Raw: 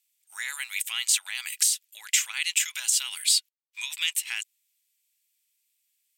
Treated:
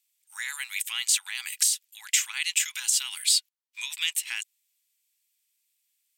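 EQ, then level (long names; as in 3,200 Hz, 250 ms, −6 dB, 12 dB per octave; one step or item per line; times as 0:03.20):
Chebyshev high-pass filter 780 Hz, order 10
0.0 dB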